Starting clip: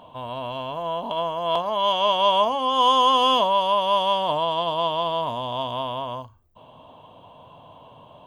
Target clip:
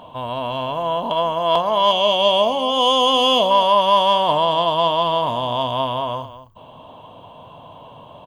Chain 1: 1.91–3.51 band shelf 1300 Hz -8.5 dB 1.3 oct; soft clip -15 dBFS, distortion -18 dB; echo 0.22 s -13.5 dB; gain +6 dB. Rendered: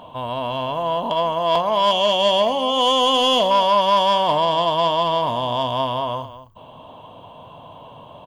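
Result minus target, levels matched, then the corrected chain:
soft clip: distortion +14 dB
1.91–3.51 band shelf 1300 Hz -8.5 dB 1.3 oct; soft clip -6.5 dBFS, distortion -32 dB; echo 0.22 s -13.5 dB; gain +6 dB

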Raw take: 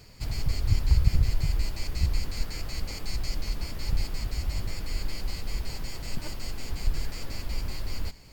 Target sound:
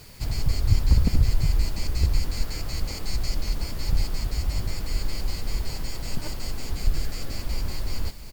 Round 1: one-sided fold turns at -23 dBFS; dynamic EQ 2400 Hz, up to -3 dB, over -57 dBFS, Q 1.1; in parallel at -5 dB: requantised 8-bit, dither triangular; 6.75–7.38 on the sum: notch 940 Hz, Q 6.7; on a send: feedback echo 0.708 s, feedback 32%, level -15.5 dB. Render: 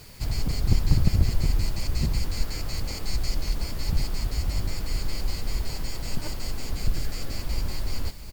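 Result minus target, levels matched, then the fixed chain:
one-sided fold: distortion +12 dB
one-sided fold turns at -13.5 dBFS; dynamic EQ 2400 Hz, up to -3 dB, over -57 dBFS, Q 1.1; in parallel at -5 dB: requantised 8-bit, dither triangular; 6.75–7.38 on the sum: notch 940 Hz, Q 6.7; on a send: feedback echo 0.708 s, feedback 32%, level -15.5 dB

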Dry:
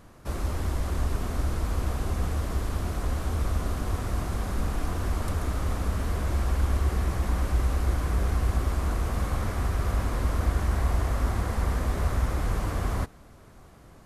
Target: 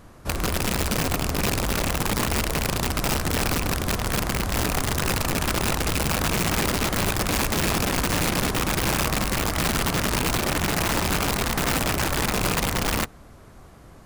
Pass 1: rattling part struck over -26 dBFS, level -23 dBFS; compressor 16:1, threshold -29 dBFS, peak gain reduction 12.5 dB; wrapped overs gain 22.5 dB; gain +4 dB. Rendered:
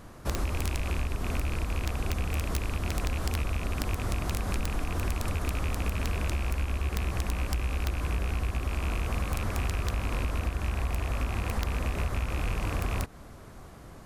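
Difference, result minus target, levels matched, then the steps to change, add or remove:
compressor: peak gain reduction +12.5 dB
remove: compressor 16:1, threshold -29 dBFS, peak gain reduction 12.5 dB

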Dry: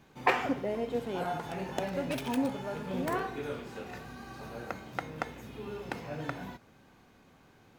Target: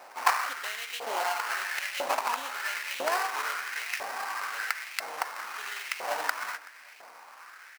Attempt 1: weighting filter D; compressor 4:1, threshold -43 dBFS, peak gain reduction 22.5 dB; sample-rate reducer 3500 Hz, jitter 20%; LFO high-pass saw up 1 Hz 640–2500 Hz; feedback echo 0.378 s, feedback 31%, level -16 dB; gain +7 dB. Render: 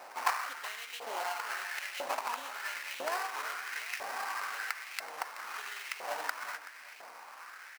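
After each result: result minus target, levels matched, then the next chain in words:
compressor: peak gain reduction +6.5 dB; echo-to-direct +6.5 dB
weighting filter D; compressor 4:1, threshold -34.5 dBFS, peak gain reduction 16 dB; sample-rate reducer 3500 Hz, jitter 20%; LFO high-pass saw up 1 Hz 640–2500 Hz; feedback echo 0.378 s, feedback 31%, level -16 dB; gain +7 dB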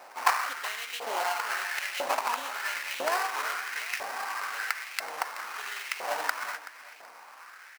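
echo-to-direct +6.5 dB
weighting filter D; compressor 4:1, threshold -34.5 dBFS, peak gain reduction 16 dB; sample-rate reducer 3500 Hz, jitter 20%; LFO high-pass saw up 1 Hz 640–2500 Hz; feedback echo 0.378 s, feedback 31%, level -22.5 dB; gain +7 dB

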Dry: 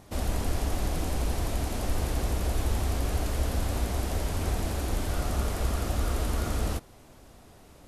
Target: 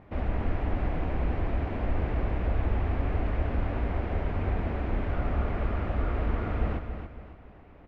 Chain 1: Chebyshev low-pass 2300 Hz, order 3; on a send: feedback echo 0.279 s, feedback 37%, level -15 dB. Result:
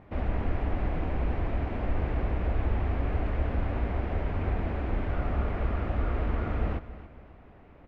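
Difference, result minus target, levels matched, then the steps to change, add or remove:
echo-to-direct -7 dB
change: feedback echo 0.279 s, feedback 37%, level -8 dB

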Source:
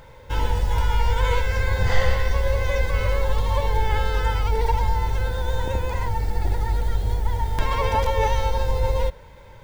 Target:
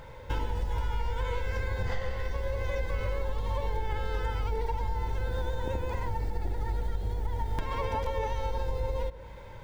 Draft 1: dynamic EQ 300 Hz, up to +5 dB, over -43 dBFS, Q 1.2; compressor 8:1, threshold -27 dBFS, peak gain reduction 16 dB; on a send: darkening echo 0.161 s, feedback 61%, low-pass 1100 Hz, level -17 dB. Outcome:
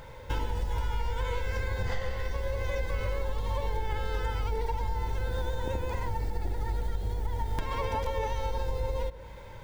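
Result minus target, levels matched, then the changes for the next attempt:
8000 Hz band +3.5 dB
add after compressor: high shelf 4300 Hz -5 dB

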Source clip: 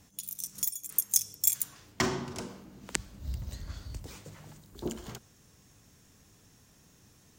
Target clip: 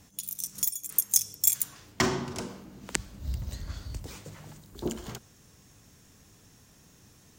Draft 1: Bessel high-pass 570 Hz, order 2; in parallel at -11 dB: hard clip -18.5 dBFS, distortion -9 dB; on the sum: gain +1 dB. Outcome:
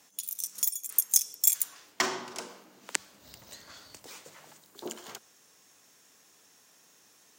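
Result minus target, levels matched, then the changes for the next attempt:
500 Hz band -6.5 dB
remove: Bessel high-pass 570 Hz, order 2

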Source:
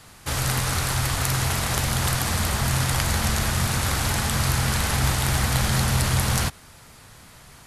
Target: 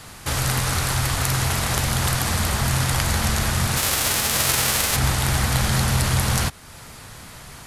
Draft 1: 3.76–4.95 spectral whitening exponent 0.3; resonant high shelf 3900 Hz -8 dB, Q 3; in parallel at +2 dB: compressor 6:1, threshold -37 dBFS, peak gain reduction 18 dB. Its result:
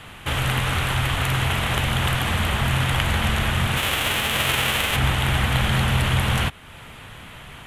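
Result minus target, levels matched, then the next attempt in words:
8000 Hz band -9.0 dB
3.76–4.95 spectral whitening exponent 0.3; in parallel at +2 dB: compressor 6:1, threshold -37 dBFS, peak gain reduction 18 dB

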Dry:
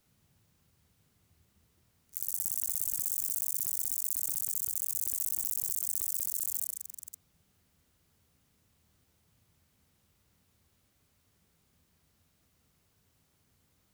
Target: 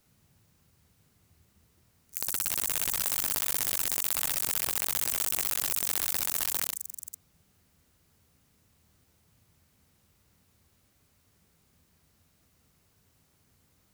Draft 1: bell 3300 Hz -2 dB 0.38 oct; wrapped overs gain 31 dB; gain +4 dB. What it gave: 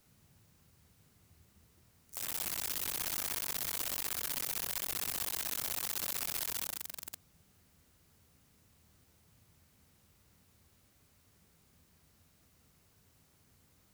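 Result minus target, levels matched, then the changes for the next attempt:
wrapped overs: distortion +17 dB
change: wrapped overs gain 19.5 dB

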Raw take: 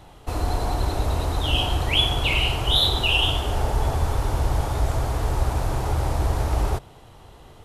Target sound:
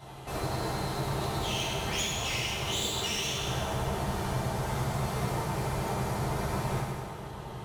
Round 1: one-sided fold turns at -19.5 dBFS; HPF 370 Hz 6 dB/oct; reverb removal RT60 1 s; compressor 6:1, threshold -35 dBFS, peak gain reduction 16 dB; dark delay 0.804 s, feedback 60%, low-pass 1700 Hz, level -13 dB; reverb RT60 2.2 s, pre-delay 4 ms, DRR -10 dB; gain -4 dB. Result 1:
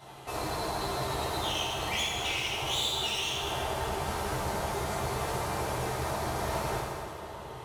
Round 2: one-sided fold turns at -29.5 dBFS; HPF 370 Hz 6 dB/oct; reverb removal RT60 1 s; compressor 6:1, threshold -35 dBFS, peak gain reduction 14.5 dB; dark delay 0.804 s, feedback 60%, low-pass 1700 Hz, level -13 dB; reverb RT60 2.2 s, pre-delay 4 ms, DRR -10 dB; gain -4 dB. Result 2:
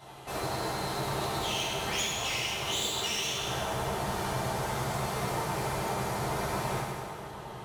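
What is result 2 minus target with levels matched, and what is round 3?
125 Hz band -4.5 dB
one-sided fold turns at -29.5 dBFS; HPF 120 Hz 6 dB/oct; reverb removal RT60 1 s; compressor 6:1, threshold -35 dBFS, peak gain reduction 15 dB; dark delay 0.804 s, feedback 60%, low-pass 1700 Hz, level -13 dB; reverb RT60 2.2 s, pre-delay 4 ms, DRR -10 dB; gain -4 dB

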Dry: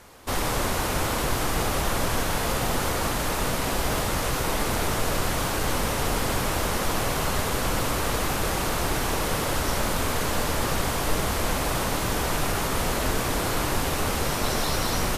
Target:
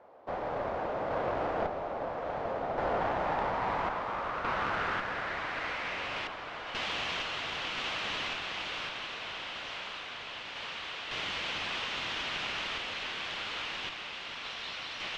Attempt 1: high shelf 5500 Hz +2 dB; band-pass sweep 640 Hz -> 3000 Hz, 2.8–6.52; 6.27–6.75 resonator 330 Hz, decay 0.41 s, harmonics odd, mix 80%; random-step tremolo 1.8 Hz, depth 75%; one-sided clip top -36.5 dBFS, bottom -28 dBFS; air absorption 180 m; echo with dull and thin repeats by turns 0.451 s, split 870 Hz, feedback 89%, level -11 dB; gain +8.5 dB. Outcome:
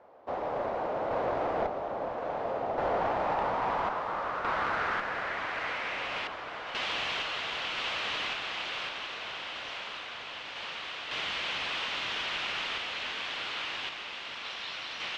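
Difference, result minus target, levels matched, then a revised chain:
one-sided clip: distortion -6 dB
high shelf 5500 Hz +2 dB; band-pass sweep 640 Hz -> 3000 Hz, 2.8–6.52; 6.27–6.75 resonator 330 Hz, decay 0.41 s, harmonics odd, mix 80%; random-step tremolo 1.8 Hz, depth 75%; one-sided clip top -44 dBFS, bottom -28 dBFS; air absorption 180 m; echo with dull and thin repeats by turns 0.451 s, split 870 Hz, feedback 89%, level -11 dB; gain +8.5 dB

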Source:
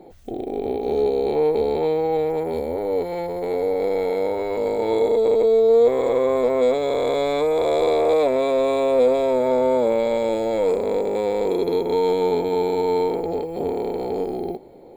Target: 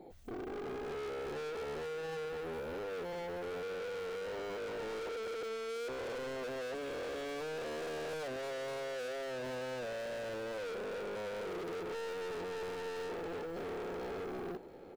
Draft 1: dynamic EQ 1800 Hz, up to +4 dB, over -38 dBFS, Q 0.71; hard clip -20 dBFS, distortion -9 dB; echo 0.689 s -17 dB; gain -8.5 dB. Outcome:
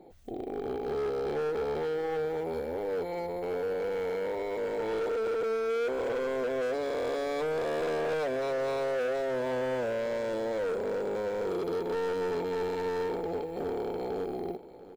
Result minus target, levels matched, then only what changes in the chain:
hard clip: distortion -5 dB
change: hard clip -31 dBFS, distortion -4 dB

